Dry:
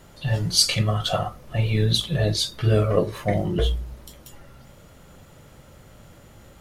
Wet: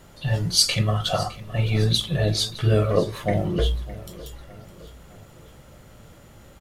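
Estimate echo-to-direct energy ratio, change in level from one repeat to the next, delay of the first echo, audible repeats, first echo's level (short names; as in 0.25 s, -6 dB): -17.0 dB, -6.5 dB, 0.611 s, 3, -18.0 dB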